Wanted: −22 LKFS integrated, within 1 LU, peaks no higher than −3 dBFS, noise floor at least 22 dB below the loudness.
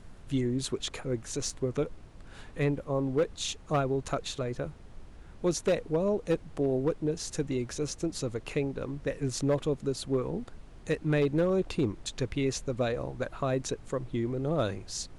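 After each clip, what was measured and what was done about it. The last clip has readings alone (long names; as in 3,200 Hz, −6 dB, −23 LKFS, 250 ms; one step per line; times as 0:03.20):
share of clipped samples 0.5%; peaks flattened at −20.0 dBFS; background noise floor −50 dBFS; target noise floor −54 dBFS; integrated loudness −31.5 LKFS; sample peak −20.0 dBFS; target loudness −22.0 LKFS
→ clipped peaks rebuilt −20 dBFS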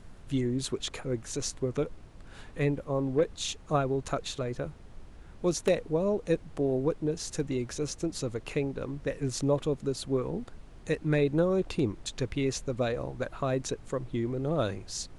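share of clipped samples 0.0%; background noise floor −50 dBFS; target noise floor −54 dBFS
→ noise reduction from a noise print 6 dB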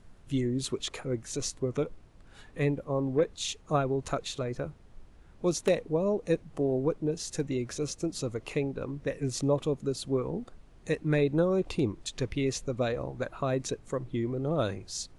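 background noise floor −56 dBFS; integrated loudness −31.5 LKFS; sample peak −11.0 dBFS; target loudness −22.0 LKFS
→ level +9.5 dB
brickwall limiter −3 dBFS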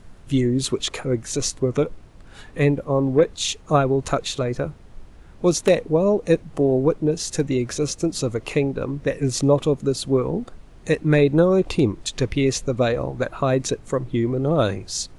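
integrated loudness −22.0 LKFS; sample peak −3.0 dBFS; background noise floor −46 dBFS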